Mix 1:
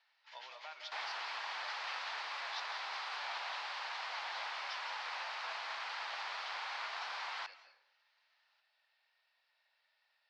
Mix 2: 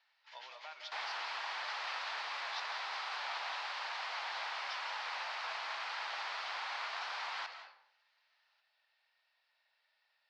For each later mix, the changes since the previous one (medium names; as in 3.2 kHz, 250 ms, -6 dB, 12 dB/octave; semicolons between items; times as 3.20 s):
second sound: send +11.0 dB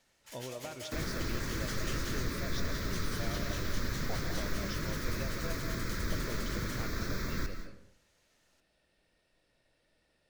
first sound: remove distance through air 100 m; second sound: add static phaser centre 2.9 kHz, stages 6; master: remove elliptic band-pass 840–4700 Hz, stop band 80 dB